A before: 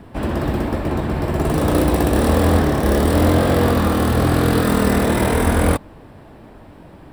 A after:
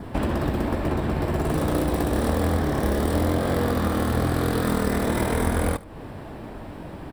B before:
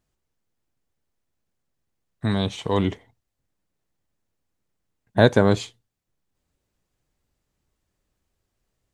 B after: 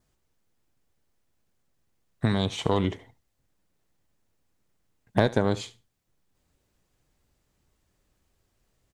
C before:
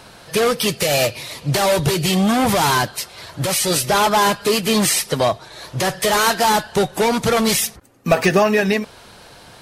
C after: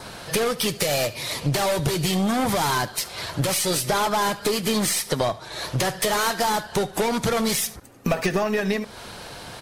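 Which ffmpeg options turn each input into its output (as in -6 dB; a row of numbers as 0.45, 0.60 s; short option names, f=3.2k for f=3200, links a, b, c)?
-af "adynamicequalizer=threshold=0.00631:dfrequency=2700:dqfactor=6.9:tfrequency=2700:tqfactor=6.9:attack=5:release=100:ratio=0.375:range=3:mode=cutabove:tftype=bell,acompressor=threshold=-27dB:ratio=4,aeval=exprs='0.188*(cos(1*acos(clip(val(0)/0.188,-1,1)))-cos(1*PI/2))+0.0531*(cos(2*acos(clip(val(0)/0.188,-1,1)))-cos(2*PI/2))+0.00266*(cos(8*acos(clip(val(0)/0.188,-1,1)))-cos(8*PI/2))':c=same,aecho=1:1:73|146:0.112|0.0168,volume=4.5dB"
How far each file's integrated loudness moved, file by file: -6.5, -5.0, -6.0 LU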